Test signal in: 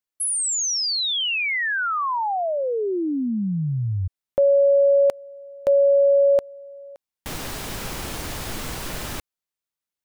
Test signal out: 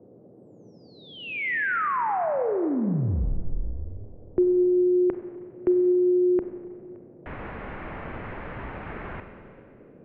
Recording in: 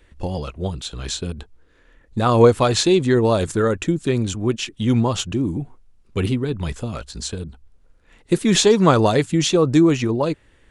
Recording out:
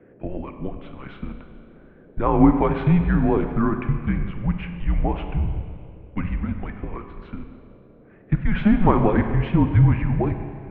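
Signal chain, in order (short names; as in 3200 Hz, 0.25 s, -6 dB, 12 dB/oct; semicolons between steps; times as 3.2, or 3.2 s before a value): low shelf 170 Hz +6 dB; mistuned SSB -200 Hz 180–2400 Hz; band noise 110–520 Hz -49 dBFS; Schroeder reverb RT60 2.1 s, combs from 31 ms, DRR 6.5 dB; gain -2.5 dB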